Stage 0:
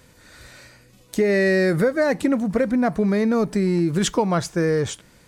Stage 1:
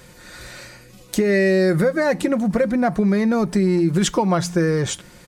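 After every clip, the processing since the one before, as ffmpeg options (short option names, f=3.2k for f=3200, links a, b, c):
-af "aecho=1:1:5.6:0.41,bandreject=f=87.53:t=h:w=4,bandreject=f=175.06:t=h:w=4,bandreject=f=262.59:t=h:w=4,acompressor=threshold=-26dB:ratio=2,volume=6.5dB"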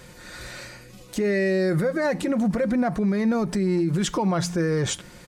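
-af "alimiter=limit=-16dB:level=0:latency=1:release=52,highshelf=f=10k:g=-4"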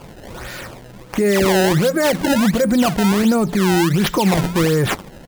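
-af "acrusher=samples=22:mix=1:aa=0.000001:lfo=1:lforange=35.2:lforate=1.4,volume=7dB"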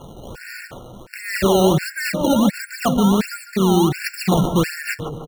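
-filter_complex "[0:a]asplit=2[a][b];[b]adelay=149,lowpass=f=1.4k:p=1,volume=-7.5dB,asplit=2[c][d];[d]adelay=149,lowpass=f=1.4k:p=1,volume=0.47,asplit=2[e][f];[f]adelay=149,lowpass=f=1.4k:p=1,volume=0.47,asplit=2[g][h];[h]adelay=149,lowpass=f=1.4k:p=1,volume=0.47,asplit=2[i][j];[j]adelay=149,lowpass=f=1.4k:p=1,volume=0.47[k];[a][c][e][g][i][k]amix=inputs=6:normalize=0,afftfilt=real='re*gt(sin(2*PI*1.4*pts/sr)*(1-2*mod(floor(b*sr/1024/1400),2)),0)':imag='im*gt(sin(2*PI*1.4*pts/sr)*(1-2*mod(floor(b*sr/1024/1400),2)),0)':win_size=1024:overlap=0.75"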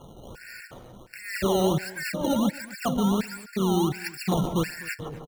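-filter_complex "[0:a]asplit=2[a][b];[b]adelay=250.7,volume=-21dB,highshelf=f=4k:g=-5.64[c];[a][c]amix=inputs=2:normalize=0,volume=-8dB"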